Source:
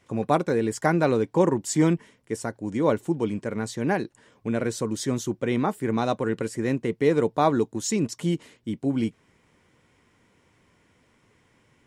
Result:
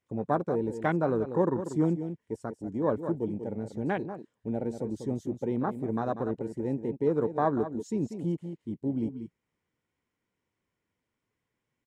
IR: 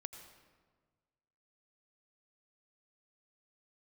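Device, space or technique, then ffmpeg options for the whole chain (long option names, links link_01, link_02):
ducked delay: -filter_complex "[0:a]asplit=3[link_01][link_02][link_03];[link_02]adelay=190,volume=-8.5dB[link_04];[link_03]apad=whole_len=531467[link_05];[link_04][link_05]sidechaincompress=threshold=-24dB:ratio=8:attack=47:release=198[link_06];[link_01][link_06]amix=inputs=2:normalize=0,afwtdn=0.0355,volume=-5.5dB"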